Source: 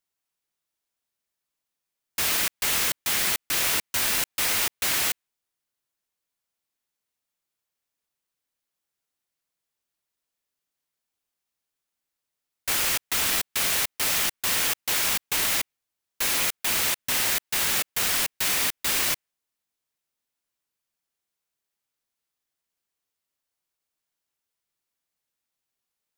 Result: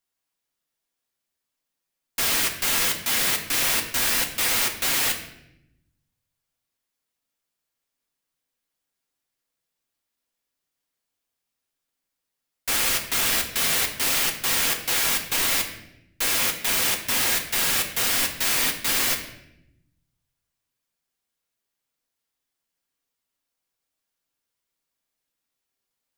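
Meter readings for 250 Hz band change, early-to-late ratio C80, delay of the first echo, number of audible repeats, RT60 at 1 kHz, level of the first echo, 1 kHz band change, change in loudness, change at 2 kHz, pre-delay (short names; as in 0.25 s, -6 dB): +4.0 dB, 11.0 dB, none, none, 0.70 s, none, +2.0 dB, +1.5 dB, +2.0 dB, 4 ms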